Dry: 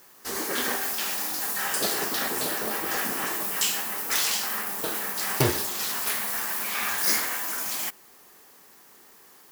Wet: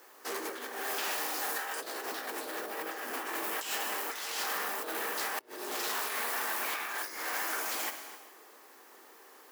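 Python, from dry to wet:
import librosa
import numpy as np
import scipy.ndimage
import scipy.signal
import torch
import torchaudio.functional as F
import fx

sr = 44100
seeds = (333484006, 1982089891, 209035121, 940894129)

y = fx.high_shelf(x, sr, hz=2800.0, db=-9.5)
y = y + 10.0 ** (-18.5 / 20.0) * np.pad(y, (int(260 * sr / 1000.0), 0))[:len(y)]
y = fx.rev_gated(y, sr, seeds[0], gate_ms=470, shape='falling', drr_db=7.0)
y = fx.over_compress(y, sr, threshold_db=-34.0, ratio=-0.5)
y = scipy.signal.sosfilt(scipy.signal.butter(4, 310.0, 'highpass', fs=sr, output='sos'), y)
y = fx.transformer_sat(y, sr, knee_hz=2500.0)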